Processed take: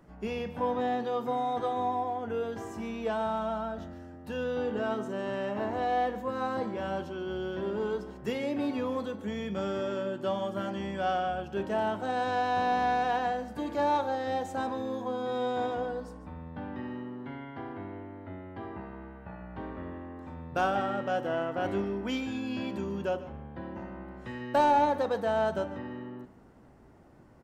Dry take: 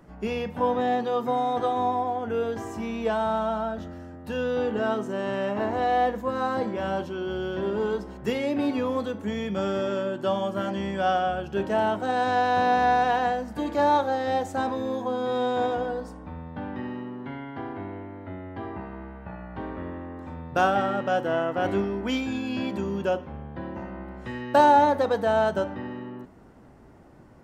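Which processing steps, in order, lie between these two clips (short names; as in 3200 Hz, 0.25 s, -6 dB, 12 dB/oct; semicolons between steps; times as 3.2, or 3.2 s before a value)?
in parallel at -6 dB: soft clip -19 dBFS, distortion -13 dB; on the sum: echo 0.146 s -16 dB; gain -8.5 dB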